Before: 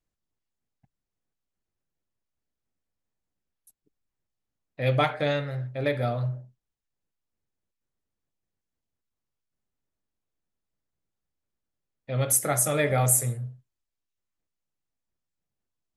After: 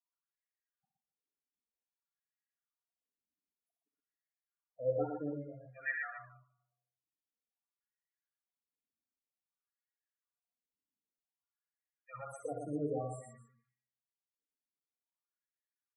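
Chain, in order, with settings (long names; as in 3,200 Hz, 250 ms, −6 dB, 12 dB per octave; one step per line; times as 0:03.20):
parametric band 500 Hz −14.5 dB 1.9 octaves
comb filter 4.2 ms, depth 35%
four-comb reverb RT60 0.77 s, combs from 27 ms, DRR 7.5 dB
reverb reduction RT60 0.77 s
LFO wah 0.53 Hz 350–1,900 Hz, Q 3.3
in parallel at −11 dB: centre clipping without the shift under −48.5 dBFS
on the sum: spectral peaks only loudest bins 8
on a send: multi-tap delay 65/119/267 ms −7.5/−4.5/−17 dB
on the sum: level +5.5 dB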